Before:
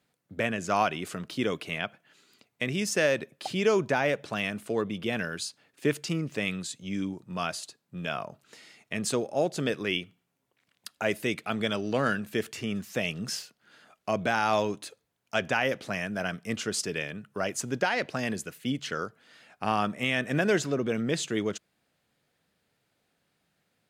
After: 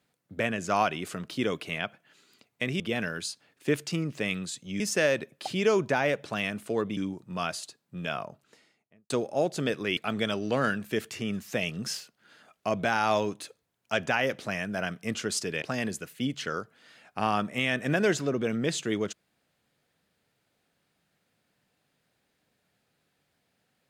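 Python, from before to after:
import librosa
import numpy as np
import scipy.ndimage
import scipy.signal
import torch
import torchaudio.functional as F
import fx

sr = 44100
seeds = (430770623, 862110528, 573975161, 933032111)

y = fx.studio_fade_out(x, sr, start_s=8.1, length_s=1.0)
y = fx.edit(y, sr, fx.move(start_s=4.97, length_s=2.0, to_s=2.8),
    fx.cut(start_s=9.97, length_s=1.42),
    fx.cut(start_s=17.04, length_s=1.03), tone=tone)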